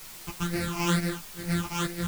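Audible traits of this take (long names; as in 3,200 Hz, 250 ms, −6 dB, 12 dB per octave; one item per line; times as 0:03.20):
a buzz of ramps at a fixed pitch in blocks of 256 samples
phaser sweep stages 8, 2.2 Hz, lowest notch 490–1,000 Hz
a quantiser's noise floor 8 bits, dither triangular
a shimmering, thickened sound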